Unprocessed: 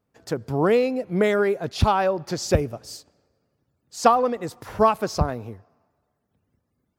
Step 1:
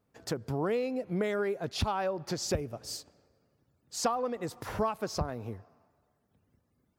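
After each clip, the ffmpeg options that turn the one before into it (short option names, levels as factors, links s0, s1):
-af "acompressor=threshold=0.0224:ratio=2.5"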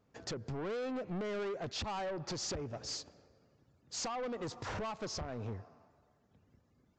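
-af "alimiter=level_in=1.19:limit=0.0631:level=0:latency=1:release=244,volume=0.841,aresample=16000,asoftclip=type=tanh:threshold=0.0119,aresample=44100,volume=1.41"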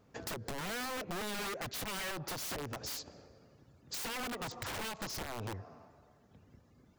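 -af "aeval=exprs='(mod(63.1*val(0)+1,2)-1)/63.1':c=same,acompressor=threshold=0.00501:ratio=6,volume=2.24"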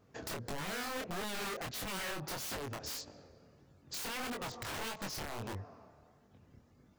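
-af "flanger=delay=20:depth=7.7:speed=1.6,volume=1.33"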